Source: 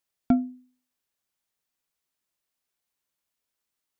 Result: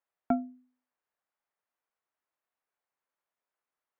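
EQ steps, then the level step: three-band isolator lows -16 dB, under 490 Hz, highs -21 dB, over 2 kHz; peaking EQ 260 Hz +3.5 dB 2.1 oct; +2.0 dB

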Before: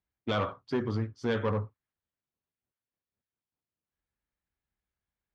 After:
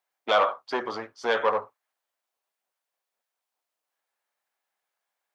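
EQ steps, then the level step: resonant high-pass 690 Hz, resonance Q 1.7; +8.0 dB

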